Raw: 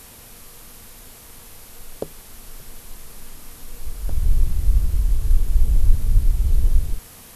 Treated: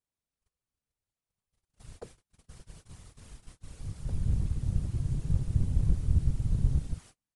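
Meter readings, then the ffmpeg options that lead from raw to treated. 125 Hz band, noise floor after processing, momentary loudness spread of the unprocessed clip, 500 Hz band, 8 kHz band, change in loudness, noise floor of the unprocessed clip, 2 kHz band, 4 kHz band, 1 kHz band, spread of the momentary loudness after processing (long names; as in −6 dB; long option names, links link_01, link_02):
−4.5 dB, below −85 dBFS, 20 LU, −11.0 dB, −15.0 dB, −7.5 dB, −44 dBFS, below −10 dB, −13.5 dB, −11.0 dB, 17 LU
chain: -af "agate=range=-39dB:threshold=-35dB:ratio=16:detection=peak,afftfilt=real='hypot(re,im)*cos(2*PI*random(0))':imag='hypot(re,im)*sin(2*PI*random(1))':win_size=512:overlap=0.75,aresample=22050,aresample=44100,volume=-5dB"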